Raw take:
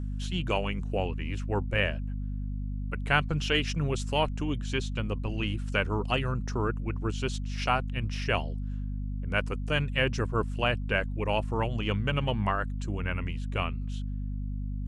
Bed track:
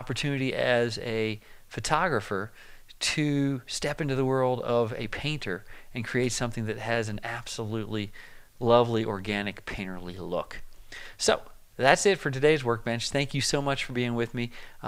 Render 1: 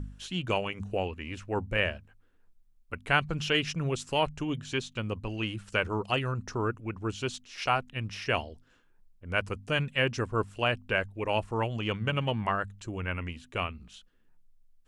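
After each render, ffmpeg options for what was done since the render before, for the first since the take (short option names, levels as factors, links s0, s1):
-af "bandreject=f=50:t=h:w=4,bandreject=f=100:t=h:w=4,bandreject=f=150:t=h:w=4,bandreject=f=200:t=h:w=4,bandreject=f=250:t=h:w=4"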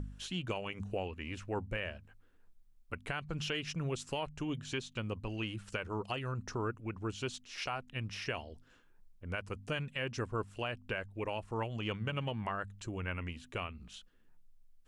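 -af "alimiter=limit=0.112:level=0:latency=1:release=226,acompressor=threshold=0.00708:ratio=1.5"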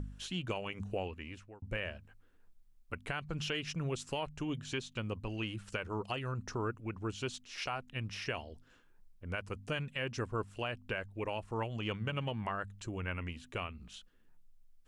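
-filter_complex "[0:a]asplit=2[s0][s1];[s0]atrim=end=1.62,asetpts=PTS-STARTPTS,afade=t=out:st=1.07:d=0.55[s2];[s1]atrim=start=1.62,asetpts=PTS-STARTPTS,afade=t=in:d=0.004:c=hsin[s3];[s2][s3]concat=n=2:v=0:a=1"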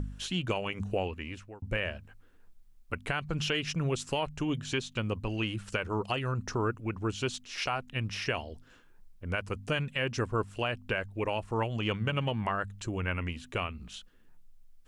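-af "volume=2"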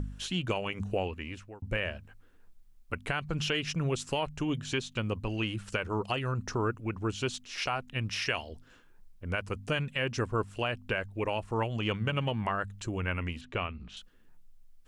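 -filter_complex "[0:a]asettb=1/sr,asplit=3[s0][s1][s2];[s0]atrim=end=8.094[s3];[s1]atrim=start=8.09:end=8.49,asetpts=PTS-STARTPTS,afade=t=in:d=0.004:c=qsin,afade=t=out:st=0.396:d=0.004:c=qsin,tiltshelf=f=970:g=-4[s4];[s2]atrim=start=8.486[s5];[s3][s4]acrossfade=d=0.004:c1=hsin:c2=qsin[s6];[s6][s5]acrossfade=d=0.004:c1=qsin:c2=hsin,asettb=1/sr,asplit=3[s7][s8][s9];[s7]atrim=end=13.414[s10];[s8]atrim=start=13.41:end=13.97,asetpts=PTS-STARTPTS,afade=t=in:d=0.004:c=qsin,afade=t=out:st=0.556:d=0.004:c=qsin,lowpass=4000[s11];[s9]atrim=start=13.966[s12];[s10][s11]acrossfade=d=0.004:c1=hsin:c2=qsin[s13];[s13][s12]acrossfade=d=0.004:c1=qsin:c2=hsin"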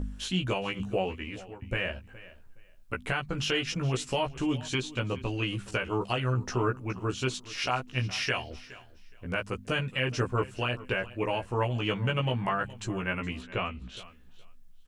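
-filter_complex "[0:a]asplit=2[s0][s1];[s1]adelay=16,volume=0.75[s2];[s0][s2]amix=inputs=2:normalize=0,aecho=1:1:418|836:0.119|0.0238"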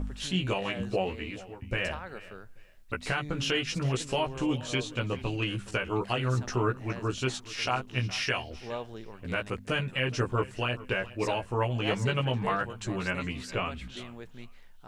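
-filter_complex "[1:a]volume=0.15[s0];[0:a][s0]amix=inputs=2:normalize=0"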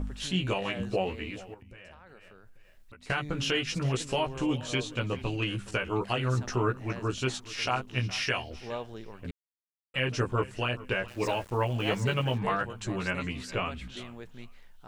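-filter_complex "[0:a]asettb=1/sr,asplit=3[s0][s1][s2];[s0]atrim=end=1.544[s3];[s1]atrim=start=1.54:end=3.1,asetpts=PTS-STARTPTS,afade=t=in:d=0.004:c=qsin,afade=t=out:st=1.556:d=0.004:c=qsin,acompressor=threshold=0.00316:ratio=4:attack=3.2:release=140:knee=1:detection=peak[s4];[s2]atrim=start=3.096[s5];[s3][s4]acrossfade=d=0.004:c1=hsin:c2=qsin[s6];[s6][s5]acrossfade=d=0.004:c1=qsin:c2=hsin,asettb=1/sr,asplit=3[s7][s8][s9];[s7]atrim=end=11.084[s10];[s8]atrim=start=11.08:end=12.38,asetpts=PTS-STARTPTS,afade=t=in:d=0.004:c=qsin,afade=t=out:st=1.296:d=0.004:c=qsin,aeval=exprs='val(0)*gte(abs(val(0)),0.00562)':c=same[s11];[s9]atrim=start=12.376[s12];[s10][s11]acrossfade=d=0.004:c1=hsin:c2=qsin[s13];[s13][s12]acrossfade=d=0.004:c1=qsin:c2=hsin,asplit=3[s14][s15][s16];[s14]atrim=end=9.31,asetpts=PTS-STARTPTS,afade=t=out:st=9.306:d=0.004:c=hsin[s17];[s15]atrim=start=9.31:end=9.94,asetpts=PTS-STARTPTS,volume=0[s18];[s16]atrim=start=9.94,asetpts=PTS-STARTPTS,afade=t=in:d=0.004:c=hsin[s19];[s17][s18][s19]concat=n=3:v=0:a=1"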